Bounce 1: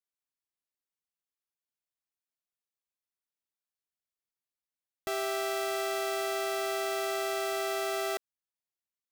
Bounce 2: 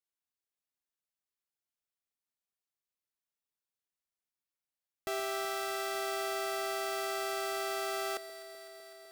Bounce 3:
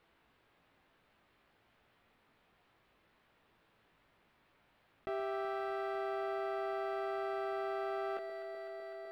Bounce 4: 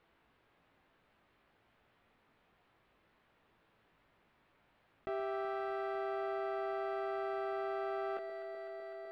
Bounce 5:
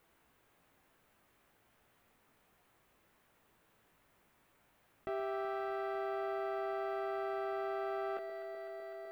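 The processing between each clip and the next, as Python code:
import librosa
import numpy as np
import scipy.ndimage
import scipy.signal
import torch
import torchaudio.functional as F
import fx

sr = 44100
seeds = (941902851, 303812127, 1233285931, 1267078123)

y1 = fx.echo_alternate(x, sr, ms=126, hz=810.0, feedback_pct=88, wet_db=-13.0)
y1 = y1 * 10.0 ** (-2.5 / 20.0)
y2 = fx.air_absorb(y1, sr, metres=500.0)
y2 = fx.doubler(y2, sr, ms=18.0, db=-6.0)
y2 = fx.env_flatten(y2, sr, amount_pct=50)
y2 = y2 * 10.0 ** (-3.0 / 20.0)
y3 = fx.high_shelf(y2, sr, hz=4600.0, db=-7.5)
y4 = fx.dmg_noise_colour(y3, sr, seeds[0], colour='blue', level_db=-78.0)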